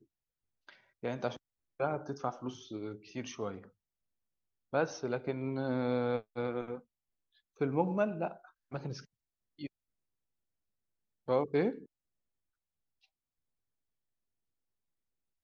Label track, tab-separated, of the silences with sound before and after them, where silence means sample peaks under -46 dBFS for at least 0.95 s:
3.650000	4.730000	silence
9.670000	11.280000	silence